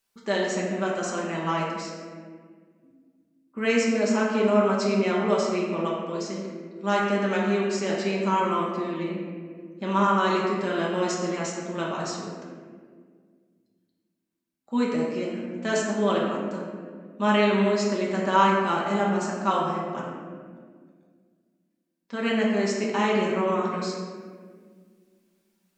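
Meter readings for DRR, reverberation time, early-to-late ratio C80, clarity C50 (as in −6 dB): −4.5 dB, 1.8 s, 2.5 dB, 0.5 dB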